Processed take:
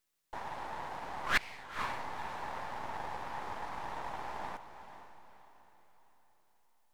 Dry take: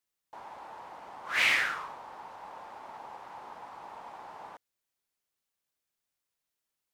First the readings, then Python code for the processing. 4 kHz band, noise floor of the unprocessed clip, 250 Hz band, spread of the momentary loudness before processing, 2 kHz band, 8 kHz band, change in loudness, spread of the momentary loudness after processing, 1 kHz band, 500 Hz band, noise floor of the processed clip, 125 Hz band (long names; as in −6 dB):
−8.0 dB, below −85 dBFS, +5.0 dB, 21 LU, −7.0 dB, −6.0 dB, −12.0 dB, 19 LU, +2.0 dB, +2.5 dB, −69 dBFS, +9.0 dB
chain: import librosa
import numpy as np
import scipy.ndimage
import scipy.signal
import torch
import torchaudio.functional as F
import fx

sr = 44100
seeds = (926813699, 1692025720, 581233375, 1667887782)

y = np.where(x < 0.0, 10.0 ** (-12.0 / 20.0) * x, x)
y = fx.gate_flip(y, sr, shuts_db=-22.0, range_db=-29)
y = fx.echo_diffused(y, sr, ms=487, feedback_pct=42, wet_db=-11)
y = F.gain(torch.from_numpy(y), 7.5).numpy()